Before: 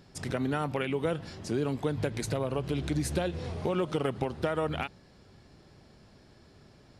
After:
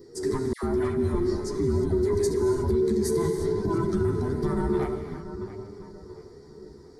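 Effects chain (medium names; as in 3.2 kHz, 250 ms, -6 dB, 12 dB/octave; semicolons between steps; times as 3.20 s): every band turned upside down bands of 500 Hz; FFT filter 290 Hz 0 dB, 410 Hz +6 dB, 830 Hz -11 dB, 1.9 kHz -6 dB, 2.7 kHz -26 dB, 4.5 kHz -2 dB; filtered feedback delay 682 ms, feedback 40%, low-pass 2.4 kHz, level -11.5 dB; gated-style reverb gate 380 ms flat, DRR 5 dB; chorus voices 2, 0.53 Hz, delay 12 ms, depth 2.2 ms; peak limiter -24.5 dBFS, peak gain reduction 8 dB; 0.53–2.70 s: phase dispersion lows, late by 100 ms, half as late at 1.2 kHz; trim +8 dB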